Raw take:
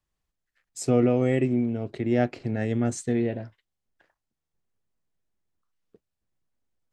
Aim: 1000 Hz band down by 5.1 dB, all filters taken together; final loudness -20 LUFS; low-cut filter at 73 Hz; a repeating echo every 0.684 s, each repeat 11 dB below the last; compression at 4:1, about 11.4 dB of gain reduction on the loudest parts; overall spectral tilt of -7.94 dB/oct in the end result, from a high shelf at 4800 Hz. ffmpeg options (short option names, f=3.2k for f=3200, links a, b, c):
-af "highpass=73,equalizer=f=1k:t=o:g=-8.5,highshelf=f=4.8k:g=-6,acompressor=threshold=-31dB:ratio=4,aecho=1:1:684|1368|2052:0.282|0.0789|0.0221,volume=15.5dB"